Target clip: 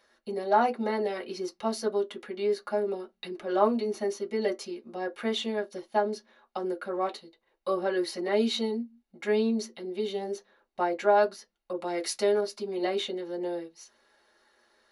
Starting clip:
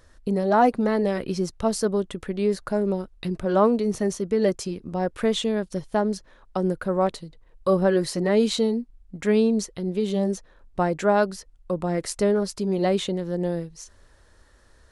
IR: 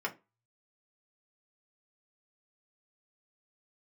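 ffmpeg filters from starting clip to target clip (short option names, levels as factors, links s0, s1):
-filter_complex "[1:a]atrim=start_sample=2205,asetrate=88200,aresample=44100[s0];[0:a][s0]afir=irnorm=-1:irlink=0,asettb=1/sr,asplit=3[s1][s2][s3];[s1]atrim=end=11.734[s4];[s2]atrim=start=11.73:end=12.41,asetpts=PTS-STARTPTS,afade=t=in:d=0.004:c=qsin,afade=t=out:st=0.676:d=0.004:c=qsin,adynamicequalizer=threshold=0.00562:dfrequency=2300:dqfactor=0.7:tfrequency=2300:tqfactor=0.7:attack=5:release=100:ratio=0.375:range=3.5:mode=boostabove:tftype=highshelf[s5];[s3]atrim=start=12.406[s6];[s4][s5]acrossfade=d=0.004:c1=hsin:c2=qsin[s7];[s7][s6]acrossfade=d=0.004:c1=qsin:c2=hsin,volume=0.794"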